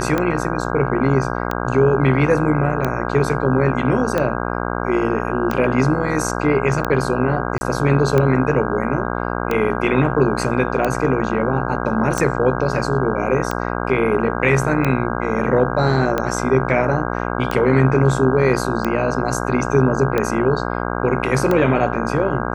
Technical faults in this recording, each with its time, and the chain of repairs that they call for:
buzz 60 Hz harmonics 27 -23 dBFS
tick 45 rpm -7 dBFS
7.58–7.61 s: dropout 30 ms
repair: de-click; de-hum 60 Hz, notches 27; interpolate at 7.58 s, 30 ms

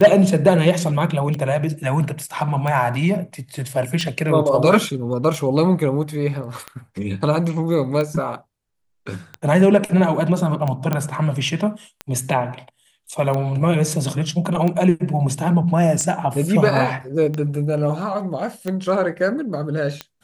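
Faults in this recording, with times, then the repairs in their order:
tick 45 rpm -13 dBFS
10.93 s: pop -8 dBFS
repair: de-click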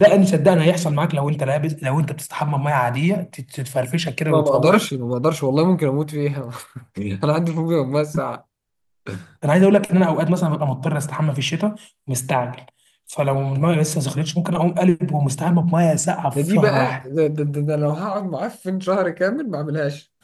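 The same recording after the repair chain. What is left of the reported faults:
nothing left

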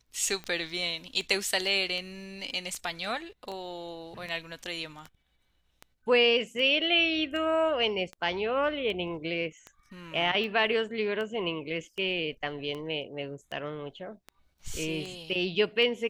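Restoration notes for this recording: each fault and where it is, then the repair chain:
tick 78 rpm -25 dBFS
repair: de-click

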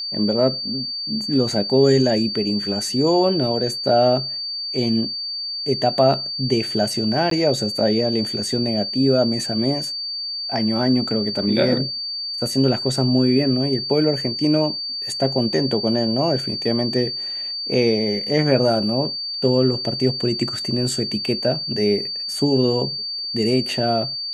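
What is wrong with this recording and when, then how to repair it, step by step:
whine 4.6 kHz -25 dBFS
7.30–7.31 s: dropout 13 ms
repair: band-stop 4.6 kHz, Q 30; interpolate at 7.30 s, 13 ms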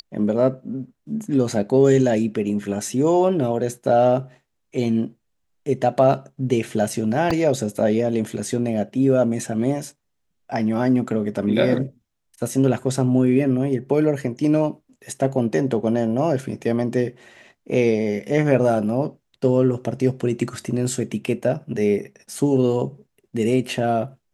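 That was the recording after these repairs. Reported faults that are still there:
nothing left

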